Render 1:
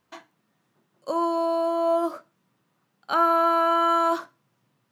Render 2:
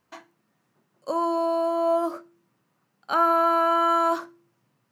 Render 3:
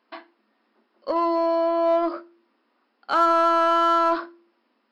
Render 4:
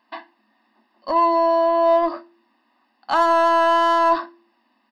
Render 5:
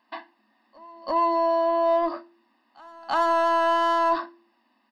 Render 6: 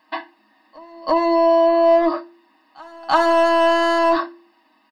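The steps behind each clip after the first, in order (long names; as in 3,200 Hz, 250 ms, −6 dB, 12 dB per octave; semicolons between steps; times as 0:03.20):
parametric band 3,500 Hz −4.5 dB 0.35 octaves; hum removal 171 Hz, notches 2
brick-wall band-pass 210–5,400 Hz; in parallel at −4 dB: soft clipping −26.5 dBFS, distortion −7 dB
comb filter 1.1 ms, depth 81%; level +2.5 dB
in parallel at −2 dB: brickwall limiter −18 dBFS, peak gain reduction 10 dB; on the sum: backwards echo 337 ms −24 dB; level −7.5 dB
comb filter 6.4 ms, depth 70%; level +7 dB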